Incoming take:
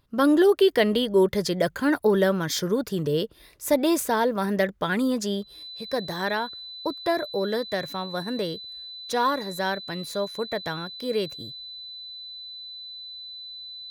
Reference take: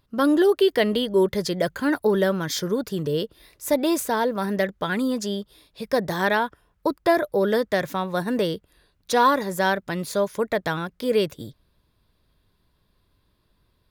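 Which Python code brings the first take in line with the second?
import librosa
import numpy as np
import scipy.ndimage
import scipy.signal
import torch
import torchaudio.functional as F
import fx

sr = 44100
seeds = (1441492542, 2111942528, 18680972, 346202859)

y = fx.notch(x, sr, hz=4000.0, q=30.0)
y = fx.fix_level(y, sr, at_s=5.63, step_db=5.5)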